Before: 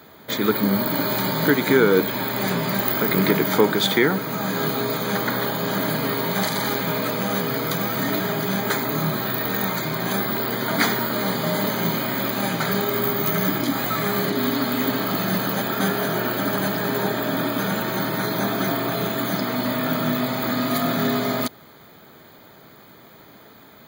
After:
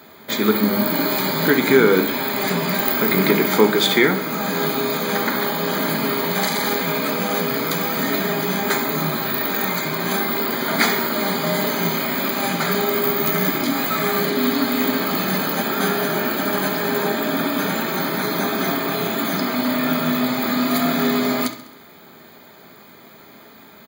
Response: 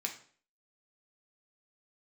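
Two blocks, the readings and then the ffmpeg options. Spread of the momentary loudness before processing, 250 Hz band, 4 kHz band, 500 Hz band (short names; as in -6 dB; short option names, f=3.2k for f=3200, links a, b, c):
5 LU, +2.0 dB, +3.0 dB, +2.5 dB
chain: -filter_complex "[0:a]aecho=1:1:67|134|201|268|335:0.178|0.0996|0.0558|0.0312|0.0175,asplit=2[a][b];[1:a]atrim=start_sample=2205[c];[b][c]afir=irnorm=-1:irlink=0,volume=0dB[d];[a][d]amix=inputs=2:normalize=0,volume=-3dB"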